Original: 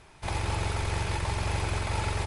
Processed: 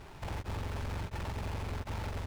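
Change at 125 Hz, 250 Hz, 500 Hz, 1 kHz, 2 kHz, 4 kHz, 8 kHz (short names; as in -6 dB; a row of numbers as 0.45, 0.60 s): -7.5, -5.0, -8.0, -10.0, -11.0, -11.5, -14.5 dB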